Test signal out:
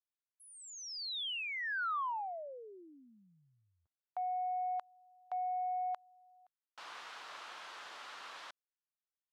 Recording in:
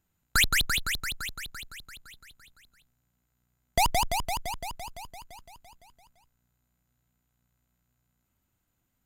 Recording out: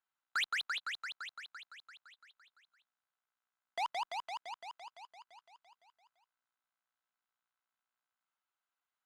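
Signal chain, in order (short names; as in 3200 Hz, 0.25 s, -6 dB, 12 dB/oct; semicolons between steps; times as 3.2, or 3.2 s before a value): Butterworth band-pass 1900 Hz, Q 0.81; bell 2300 Hz -10.5 dB 1.4 oct; soft clip -26.5 dBFS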